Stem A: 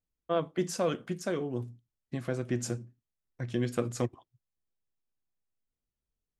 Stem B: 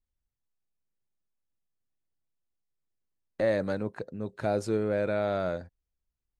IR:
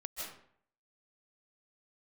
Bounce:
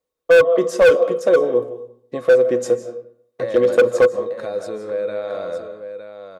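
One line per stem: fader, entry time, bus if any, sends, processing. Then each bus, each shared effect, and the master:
+1.5 dB, 0.00 s, send -7 dB, no echo send, peaking EQ 510 Hz +13 dB 1.8 oct
0.0 dB, 0.00 s, send -3 dB, echo send -6 dB, compression, threshold -29 dBFS, peak gain reduction 7.5 dB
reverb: on, RT60 0.60 s, pre-delay 115 ms
echo: delay 910 ms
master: high-pass 380 Hz 6 dB/octave; small resonant body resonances 500/1100/3700 Hz, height 16 dB, ringing for 95 ms; hard clipper -7.5 dBFS, distortion -7 dB

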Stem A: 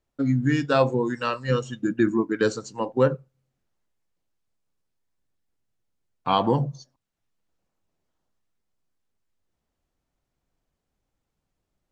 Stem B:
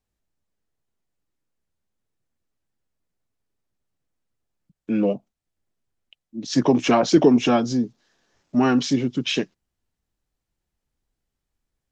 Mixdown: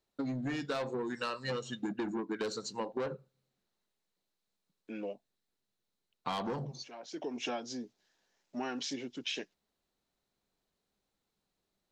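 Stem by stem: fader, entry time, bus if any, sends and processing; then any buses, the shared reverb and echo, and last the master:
-2.0 dB, 0.00 s, no send, graphic EQ with 31 bands 200 Hz +8 dB, 400 Hz +5 dB, 4 kHz +10 dB; saturation -18 dBFS, distortion -10 dB
-8.5 dB, 0.00 s, no send, high-pass 440 Hz 6 dB/octave; peaking EQ 1.2 kHz -7.5 dB 0.31 oct; auto duck -22 dB, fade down 1.40 s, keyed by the first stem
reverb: none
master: bass shelf 220 Hz -10.5 dB; compression 6:1, threshold -33 dBFS, peak gain reduction 10 dB

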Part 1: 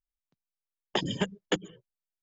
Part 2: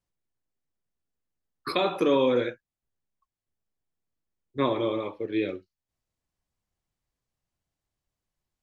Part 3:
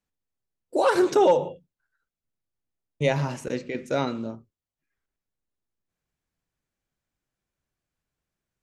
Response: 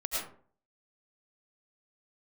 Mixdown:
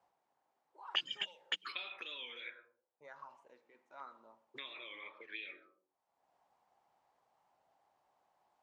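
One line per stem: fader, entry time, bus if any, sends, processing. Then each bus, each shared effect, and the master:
-1.0 dB, 0.00 s, no send, none
-7.0 dB, 0.00 s, send -15 dB, three bands compressed up and down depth 100%
0.91 s -21.5 dB -> 1.50 s -15 dB -> 3.93 s -15 dB -> 4.60 s -4 dB, 0.00 s, send -20.5 dB, bass shelf 200 Hz -11.5 dB; LFO notch saw down 1 Hz 410–3300 Hz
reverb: on, RT60 0.50 s, pre-delay 65 ms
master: treble shelf 2.7 kHz +5.5 dB; auto-wah 780–2900 Hz, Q 4.2, up, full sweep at -26.5 dBFS; warped record 45 rpm, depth 100 cents

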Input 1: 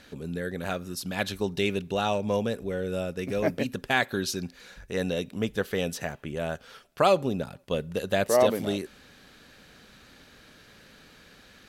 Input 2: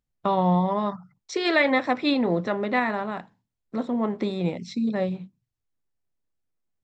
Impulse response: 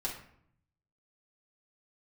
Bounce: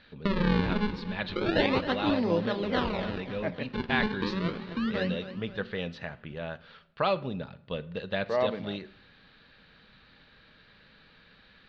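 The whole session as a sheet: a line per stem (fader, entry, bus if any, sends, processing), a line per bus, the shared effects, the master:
-4.0 dB, 0.00 s, send -14 dB, no echo send, peaking EQ 340 Hz -6 dB 0.66 oct
-4.0 dB, 0.00 s, no send, echo send -12.5 dB, decimation with a swept rate 39×, swing 160% 0.32 Hz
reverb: on, RT60 0.65 s, pre-delay 3 ms
echo: feedback delay 266 ms, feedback 52%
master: elliptic low-pass 4.2 kHz, stop band 80 dB; peaking EQ 720 Hz -5.5 dB 0.26 oct

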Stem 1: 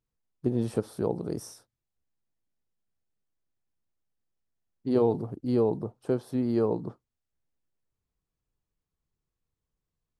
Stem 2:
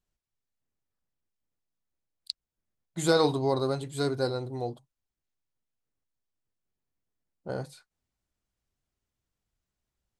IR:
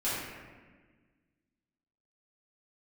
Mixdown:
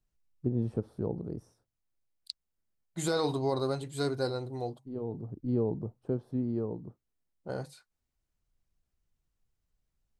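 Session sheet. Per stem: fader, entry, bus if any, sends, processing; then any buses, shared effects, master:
-10.5 dB, 0.00 s, no send, tilt EQ -3.5 dB/octave; auto duck -13 dB, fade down 1.10 s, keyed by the second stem
-2.5 dB, 0.00 s, no send, band-stop 3.4 kHz, Q 27; peak limiter -16 dBFS, peak gain reduction 6 dB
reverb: none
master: none

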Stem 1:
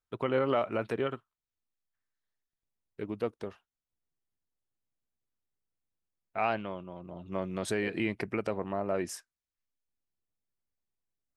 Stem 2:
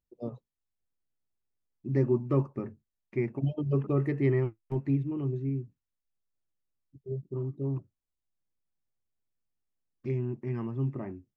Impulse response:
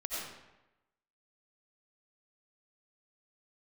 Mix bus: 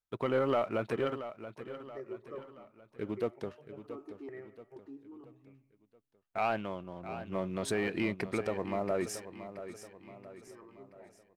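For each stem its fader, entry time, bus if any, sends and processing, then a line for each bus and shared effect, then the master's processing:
-4.0 dB, 0.00 s, no send, echo send -12 dB, waveshaping leveller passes 1
-11.5 dB, 0.00 s, send -15 dB, no echo send, high-pass 390 Hz 12 dB/octave; stepped phaser 2.1 Hz 520–1600 Hz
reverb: on, RT60 1.0 s, pre-delay 50 ms
echo: feedback delay 678 ms, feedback 46%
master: none

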